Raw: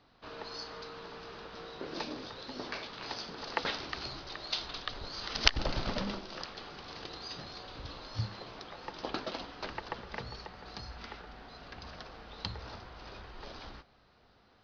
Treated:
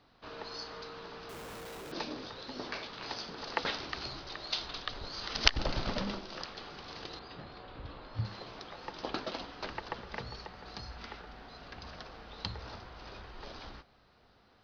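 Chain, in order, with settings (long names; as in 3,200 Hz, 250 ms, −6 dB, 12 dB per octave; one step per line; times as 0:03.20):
0:01.29–0:01.92: comparator with hysteresis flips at −52 dBFS
0:07.19–0:08.25: high-frequency loss of the air 310 metres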